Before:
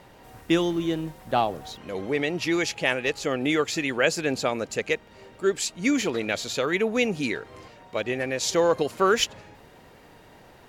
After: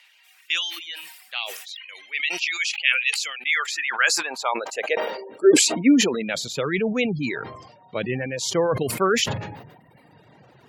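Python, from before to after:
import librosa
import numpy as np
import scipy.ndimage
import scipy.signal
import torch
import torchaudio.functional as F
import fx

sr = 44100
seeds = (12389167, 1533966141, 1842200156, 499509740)

y = fx.filter_sweep_highpass(x, sr, from_hz=2500.0, to_hz=130.0, start_s=3.29, end_s=6.73, q=2.6)
y = fx.dereverb_blind(y, sr, rt60_s=1.4)
y = fx.dynamic_eq(y, sr, hz=740.0, q=4.0, threshold_db=-41.0, ratio=4.0, max_db=-3)
y = fx.spec_gate(y, sr, threshold_db=-30, keep='strong')
y = fx.sustainer(y, sr, db_per_s=56.0)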